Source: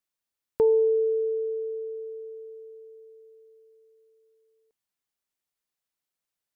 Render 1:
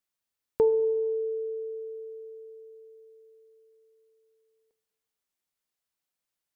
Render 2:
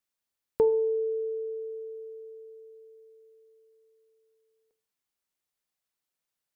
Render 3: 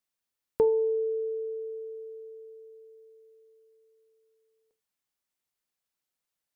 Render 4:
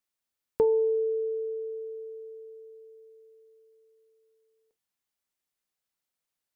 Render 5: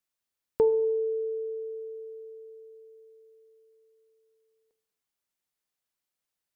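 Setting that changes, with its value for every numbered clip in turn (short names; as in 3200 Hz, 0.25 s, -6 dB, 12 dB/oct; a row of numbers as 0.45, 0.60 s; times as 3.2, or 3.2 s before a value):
non-linear reverb, gate: 520, 210, 120, 80, 330 ms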